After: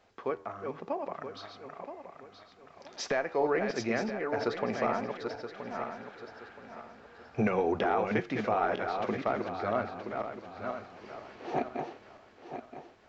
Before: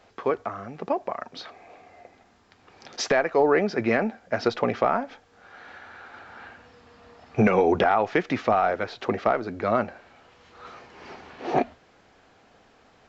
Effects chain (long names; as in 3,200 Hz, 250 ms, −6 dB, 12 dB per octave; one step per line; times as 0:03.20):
feedback delay that plays each chunk backwards 487 ms, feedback 56%, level −5 dB
flanger 0.49 Hz, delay 9.4 ms, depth 4.9 ms, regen −88%
downsampling to 22,050 Hz
level −4 dB